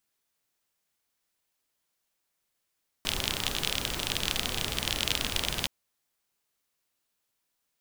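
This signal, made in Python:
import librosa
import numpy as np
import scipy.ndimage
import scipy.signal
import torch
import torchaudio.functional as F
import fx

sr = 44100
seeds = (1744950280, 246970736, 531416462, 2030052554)

y = fx.rain(sr, seeds[0], length_s=2.62, drops_per_s=36.0, hz=3200.0, bed_db=-1.5)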